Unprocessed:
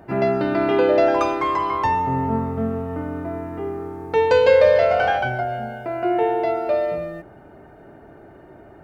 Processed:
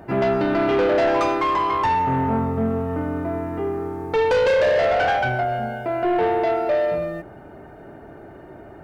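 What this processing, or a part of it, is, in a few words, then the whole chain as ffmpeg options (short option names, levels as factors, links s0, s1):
saturation between pre-emphasis and de-emphasis: -af "highshelf=f=5200:g=7.5,asoftclip=type=tanh:threshold=0.119,highshelf=f=5200:g=-7.5,volume=1.5"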